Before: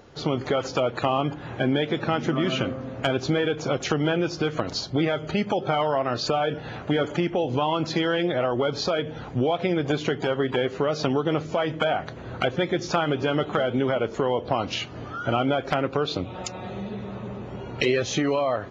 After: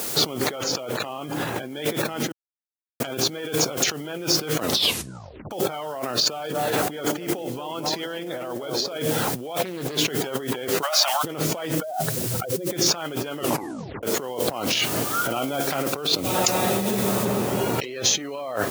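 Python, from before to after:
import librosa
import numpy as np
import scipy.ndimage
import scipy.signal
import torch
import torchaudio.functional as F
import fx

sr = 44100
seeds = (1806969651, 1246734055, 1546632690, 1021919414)

y = fx.env_flatten(x, sr, amount_pct=50, at=(0.56, 1.72))
y = fx.echo_banded(y, sr, ms=230, feedback_pct=48, hz=360.0, wet_db=-6, at=(6.18, 8.99))
y = fx.doppler_dist(y, sr, depth_ms=0.32, at=(9.65, 10.08))
y = fx.steep_highpass(y, sr, hz=610.0, slope=96, at=(10.81, 11.23), fade=0.02)
y = fx.spec_expand(y, sr, power=2.5, at=(11.78, 12.71))
y = fx.comb_fb(y, sr, f0_hz=70.0, decay_s=0.68, harmonics='all', damping=0.0, mix_pct=60, at=(15.02, 15.92), fade=0.02)
y = fx.noise_floor_step(y, sr, seeds[0], at_s=17.25, before_db=-50, after_db=-56, tilt_db=0.0)
y = fx.edit(y, sr, fx.silence(start_s=2.32, length_s=0.68),
    fx.tape_stop(start_s=4.62, length_s=0.89),
    fx.tape_stop(start_s=13.38, length_s=0.65), tone=tone)
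y = fx.over_compress(y, sr, threshold_db=-34.0, ratio=-1.0)
y = scipy.signal.sosfilt(scipy.signal.butter(2, 140.0, 'highpass', fs=sr, output='sos'), y)
y = fx.bass_treble(y, sr, bass_db=-3, treble_db=7)
y = y * librosa.db_to_amplitude(7.0)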